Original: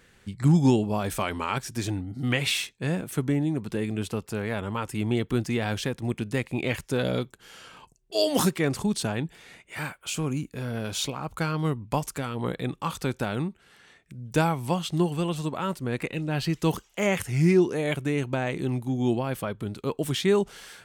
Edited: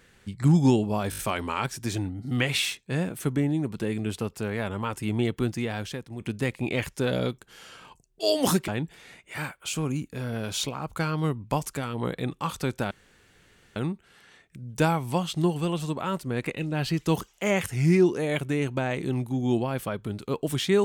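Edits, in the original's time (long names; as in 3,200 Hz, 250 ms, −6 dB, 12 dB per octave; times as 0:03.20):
0:01.10: stutter 0.02 s, 5 plays
0:05.21–0:06.12: fade out, to −10 dB
0:08.60–0:09.09: remove
0:13.32: splice in room tone 0.85 s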